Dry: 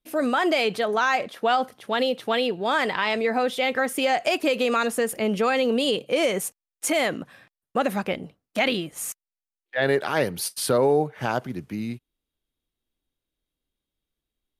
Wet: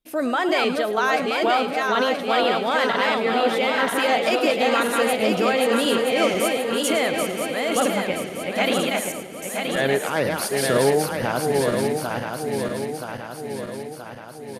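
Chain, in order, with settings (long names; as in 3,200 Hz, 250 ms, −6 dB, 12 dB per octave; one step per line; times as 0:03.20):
feedback delay that plays each chunk backwards 488 ms, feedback 74%, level −3 dB
echo with shifted repeats 108 ms, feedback 35%, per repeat +49 Hz, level −14 dB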